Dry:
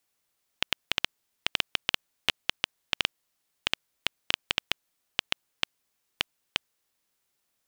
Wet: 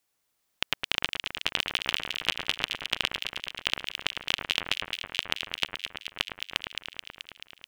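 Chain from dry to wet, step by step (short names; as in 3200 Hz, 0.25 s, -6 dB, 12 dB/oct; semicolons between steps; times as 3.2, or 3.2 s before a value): echo with dull and thin repeats by turns 0.108 s, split 2000 Hz, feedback 83%, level -4 dB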